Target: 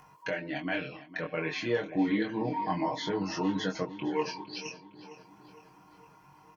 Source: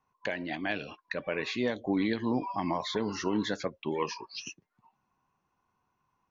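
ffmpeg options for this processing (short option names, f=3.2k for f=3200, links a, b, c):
-filter_complex "[0:a]highpass=52,bandreject=f=3.9k:w=8,aecho=1:1:6.2:0.71,acompressor=mode=upward:threshold=-40dB:ratio=2.5,flanger=delay=20:depth=4.2:speed=0.32,asplit=2[a][b];[b]adelay=441,lowpass=f=4.9k:p=1,volume=-15dB,asplit=2[c][d];[d]adelay=441,lowpass=f=4.9k:p=1,volume=0.54,asplit=2[e][f];[f]adelay=441,lowpass=f=4.9k:p=1,volume=0.54,asplit=2[g][h];[h]adelay=441,lowpass=f=4.9k:p=1,volume=0.54,asplit=2[i][j];[j]adelay=441,lowpass=f=4.9k:p=1,volume=0.54[k];[a][c][e][g][i][k]amix=inputs=6:normalize=0,asetrate=42336,aresample=44100,volume=1.5dB"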